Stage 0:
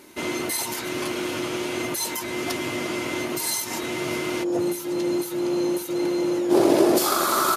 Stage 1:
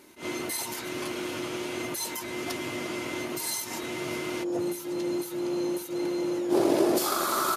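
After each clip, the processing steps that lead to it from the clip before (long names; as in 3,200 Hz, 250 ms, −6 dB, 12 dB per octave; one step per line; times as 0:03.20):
level that may rise only so fast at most 210 dB per second
level −5.5 dB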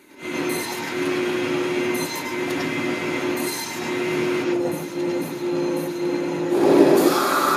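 convolution reverb RT60 0.45 s, pre-delay 91 ms, DRR −4.5 dB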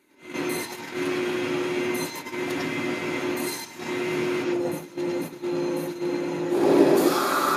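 noise gate −27 dBFS, range −9 dB
level −3.5 dB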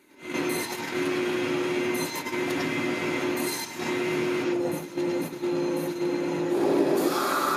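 downward compressor 2 to 1, threshold −32 dBFS, peak gain reduction 11 dB
level +4.5 dB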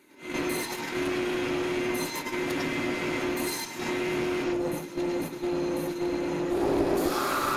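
one-sided soft clipper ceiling −25 dBFS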